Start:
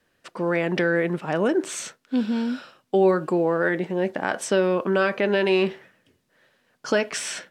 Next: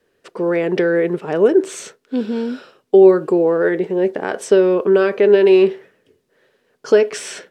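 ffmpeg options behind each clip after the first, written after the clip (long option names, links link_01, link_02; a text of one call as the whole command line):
ffmpeg -i in.wav -af "equalizer=frequency=420:width_type=o:width=0.5:gain=15" out.wav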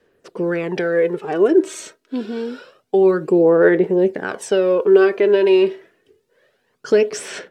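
ffmpeg -i in.wav -af "aphaser=in_gain=1:out_gain=1:delay=3.2:decay=0.53:speed=0.27:type=sinusoidal,volume=-2.5dB" out.wav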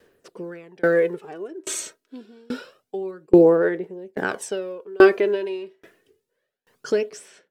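ffmpeg -i in.wav -af "crystalizer=i=1:c=0,aeval=exprs='val(0)*pow(10,-32*if(lt(mod(1.2*n/s,1),2*abs(1.2)/1000),1-mod(1.2*n/s,1)/(2*abs(1.2)/1000),(mod(1.2*n/s,1)-2*abs(1.2)/1000)/(1-2*abs(1.2)/1000))/20)':channel_layout=same,volume=4dB" out.wav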